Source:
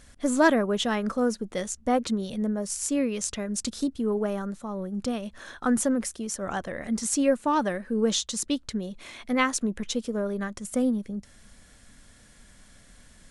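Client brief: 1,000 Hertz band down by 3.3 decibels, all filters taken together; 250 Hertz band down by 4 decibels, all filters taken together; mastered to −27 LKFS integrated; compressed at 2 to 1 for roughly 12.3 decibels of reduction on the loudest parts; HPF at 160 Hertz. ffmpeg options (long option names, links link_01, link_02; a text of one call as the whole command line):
ffmpeg -i in.wav -af "highpass=160,equalizer=frequency=250:width_type=o:gain=-3.5,equalizer=frequency=1000:width_type=o:gain=-4,acompressor=threshold=-41dB:ratio=2,volume=11.5dB" out.wav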